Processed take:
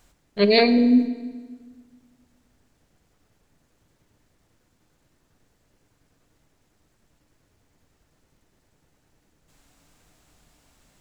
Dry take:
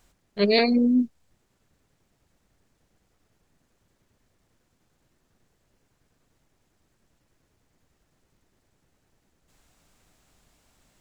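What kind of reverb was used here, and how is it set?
feedback delay network reverb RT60 1.5 s, low-frequency decay 1.3×, high-frequency decay 0.85×, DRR 10.5 dB
level +3 dB

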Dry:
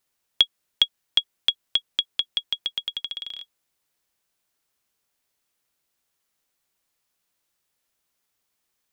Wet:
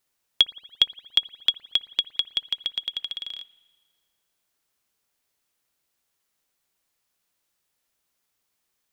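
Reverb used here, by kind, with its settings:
spring reverb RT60 1.6 s, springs 57 ms, chirp 60 ms, DRR 18.5 dB

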